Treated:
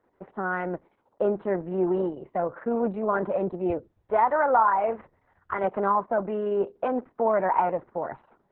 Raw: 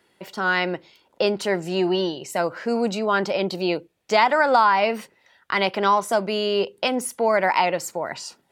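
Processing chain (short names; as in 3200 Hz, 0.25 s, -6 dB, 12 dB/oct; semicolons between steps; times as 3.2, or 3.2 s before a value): LPF 1400 Hz 24 dB/oct; 3.7–5.64 resonant low shelf 130 Hz +13.5 dB, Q 3; gain -2.5 dB; Opus 6 kbps 48000 Hz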